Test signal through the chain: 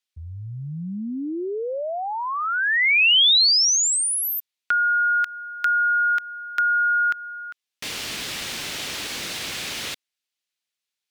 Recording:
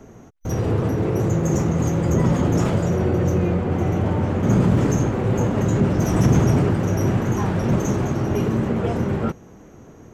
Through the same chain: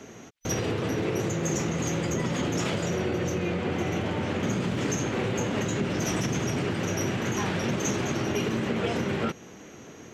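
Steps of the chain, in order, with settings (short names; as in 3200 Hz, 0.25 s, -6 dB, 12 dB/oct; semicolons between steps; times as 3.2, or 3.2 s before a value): compressor, threshold -22 dBFS; weighting filter D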